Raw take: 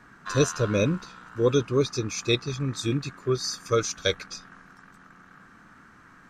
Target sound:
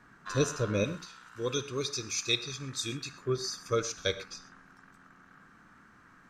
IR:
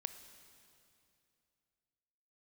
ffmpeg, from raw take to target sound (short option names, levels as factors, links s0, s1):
-filter_complex "[0:a]asettb=1/sr,asplit=3[s0][s1][s2];[s0]atrim=end=0.844[s3];[s1]atrim=start=0.84:end=3.13,asetpts=PTS-STARTPTS,afade=t=in:d=0.004:c=qsin,afade=t=out:st=2.286:d=0.004:c=qsin,tiltshelf=f=1500:g=-7[s4];[s2]atrim=start=3.126[s5];[s3][s4]acrossfade=d=0.004:c1=hsin:c2=qsin[s6];[s6][s5]acrossfade=d=0.004:c1=qsin:c2=hsin[s7];[1:a]atrim=start_sample=2205,atrim=end_sample=6174[s8];[s7][s8]afir=irnorm=-1:irlink=0,volume=0.708"